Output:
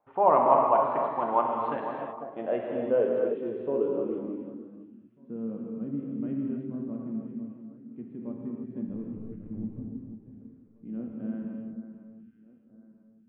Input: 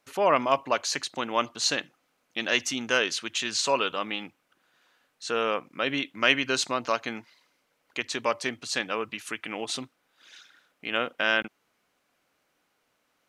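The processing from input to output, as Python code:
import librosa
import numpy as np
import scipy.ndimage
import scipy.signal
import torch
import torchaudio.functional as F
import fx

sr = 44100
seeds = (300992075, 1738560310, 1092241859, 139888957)

p1 = scipy.signal.sosfilt(scipy.signal.cheby1(5, 1.0, 3500.0, 'lowpass', fs=sr, output='sos'), x)
p2 = fx.backlash(p1, sr, play_db=-27.5, at=(8.88, 9.8))
p3 = p2 + fx.echo_alternate(p2, sr, ms=498, hz=1700.0, feedback_pct=56, wet_db=-10.5, dry=0)
p4 = fx.filter_sweep_lowpass(p3, sr, from_hz=880.0, to_hz=220.0, start_s=1.73, end_s=5.19, q=3.4)
p5 = fx.rev_gated(p4, sr, seeds[0], gate_ms=350, shape='flat', drr_db=-1.0)
y = p5 * 10.0 ** (-4.5 / 20.0)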